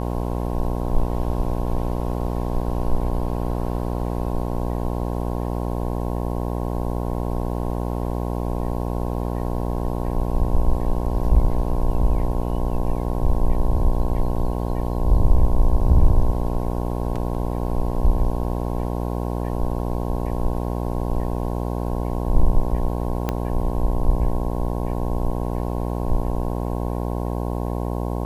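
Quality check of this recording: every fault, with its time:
mains buzz 60 Hz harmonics 18 −25 dBFS
0:23.29: click −9 dBFS

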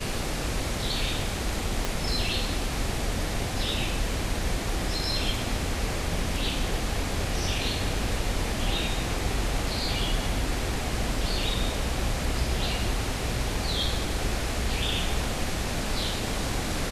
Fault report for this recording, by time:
0:01.85: click

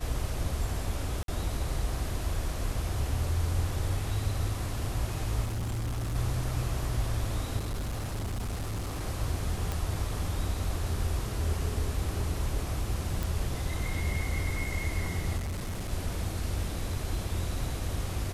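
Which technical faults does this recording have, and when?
0:01.23–0:01.28: drop-out 52 ms
0:05.44–0:06.15: clipping −29 dBFS
0:07.57–0:09.02: clipping −29.5 dBFS
0:09.72: click
0:13.23: click
0:15.37–0:15.92: clipping −30.5 dBFS

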